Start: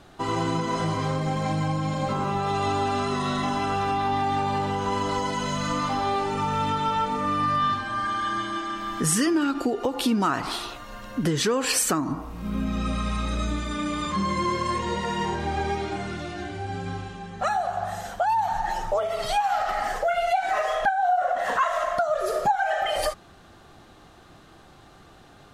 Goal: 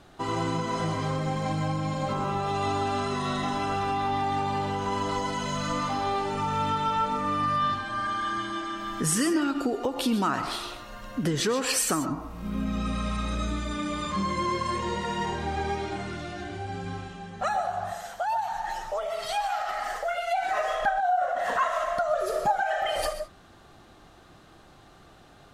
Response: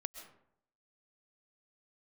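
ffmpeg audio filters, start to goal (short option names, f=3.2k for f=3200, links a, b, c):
-filter_complex "[0:a]asettb=1/sr,asplit=3[a][b][c];[a]atrim=end=17.924[d];[b]atrim=start=17.92:end=20.36,asetpts=PTS-STARTPTS,afade=t=in:d=0.004:c=qsin,afade=t=out:st=2.436:d=0.004:c=qsin,lowshelf=f=450:g=-11[e];[c]atrim=start=20.356[f];[d][e]acrossfade=d=0.004:c1=hsin:c2=qsin[g];[g][f]acrossfade=d=0.004:c1=qsin:c2=hsin[h];[1:a]atrim=start_sample=2205,afade=t=out:st=0.2:d=0.01,atrim=end_sample=9261[i];[h][i]afir=irnorm=-1:irlink=0"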